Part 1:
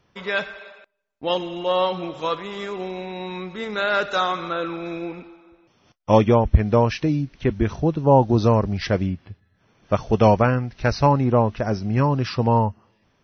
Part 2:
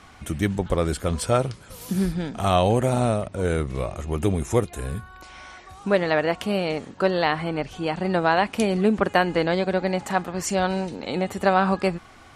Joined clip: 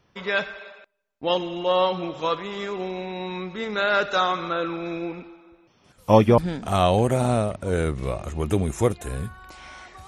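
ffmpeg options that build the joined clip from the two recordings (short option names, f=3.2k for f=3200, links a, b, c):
-filter_complex "[1:a]asplit=2[a][b];[0:a]apad=whole_dur=10.07,atrim=end=10.07,atrim=end=6.382[c];[b]atrim=start=2.098:end=5.79[d];[a]atrim=start=1.56:end=2.1,asetpts=PTS-STARTPTS,volume=-13.5dB,afade=t=in:d=0.004:c=hsin,afade=t=out:st=0.536:d=0.004:c=hsin,adelay=5840[e];[c][d]acrossfade=d=0.004:c1=hsin:c2=hsin[f];[f][e]amix=inputs=2:normalize=0"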